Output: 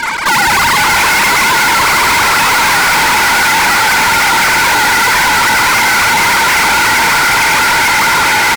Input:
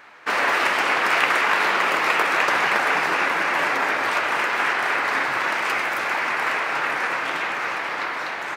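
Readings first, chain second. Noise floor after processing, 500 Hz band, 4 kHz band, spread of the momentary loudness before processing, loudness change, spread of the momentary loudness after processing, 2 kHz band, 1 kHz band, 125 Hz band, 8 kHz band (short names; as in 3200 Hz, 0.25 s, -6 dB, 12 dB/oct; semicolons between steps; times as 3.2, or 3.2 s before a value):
-10 dBFS, +6.5 dB, +16.5 dB, 6 LU, +12.5 dB, 0 LU, +11.5 dB, +12.5 dB, +21.0 dB, +24.0 dB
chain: sine-wave speech; inverse Chebyshev band-stop 190–460 Hz, stop band 50 dB; comb 0.9 ms, depth 35%; diffused feedback echo 0.56 s, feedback 42%, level -3 dB; fuzz box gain 45 dB, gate -50 dBFS; gain +4 dB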